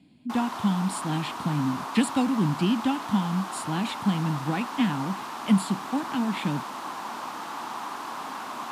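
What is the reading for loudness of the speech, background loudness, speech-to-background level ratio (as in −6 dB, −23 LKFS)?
−27.5 LKFS, −35.0 LKFS, 7.5 dB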